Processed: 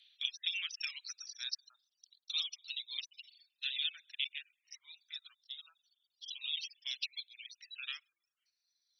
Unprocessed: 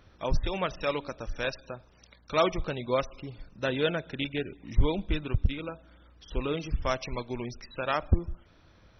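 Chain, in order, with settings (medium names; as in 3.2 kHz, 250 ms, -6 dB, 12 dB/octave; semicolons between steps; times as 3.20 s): gate -51 dBFS, range -7 dB; reverb removal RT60 1.7 s; peaking EQ 4.2 kHz +14.5 dB 2.2 oct, from 1.34 s +5 dB; compression 6:1, threshold -27 dBFS, peak gain reduction 10.5 dB; ladder high-pass 2.9 kHz, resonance 45%; barber-pole phaser -0.27 Hz; trim +8.5 dB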